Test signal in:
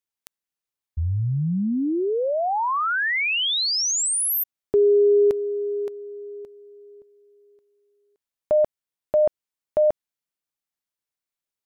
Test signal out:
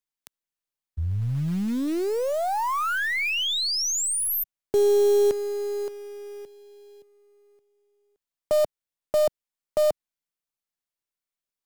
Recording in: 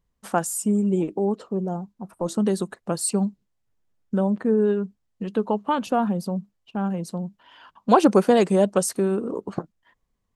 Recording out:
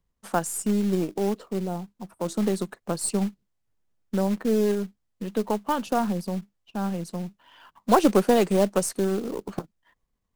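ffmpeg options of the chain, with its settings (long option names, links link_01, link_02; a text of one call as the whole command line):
ffmpeg -i in.wav -filter_complex "[0:a]aeval=exprs='if(lt(val(0),0),0.708*val(0),val(0))':channel_layout=same,acrossover=split=150|2900[link_01][link_02][link_03];[link_02]acrusher=bits=4:mode=log:mix=0:aa=0.000001[link_04];[link_01][link_04][link_03]amix=inputs=3:normalize=0,volume=-1.5dB" out.wav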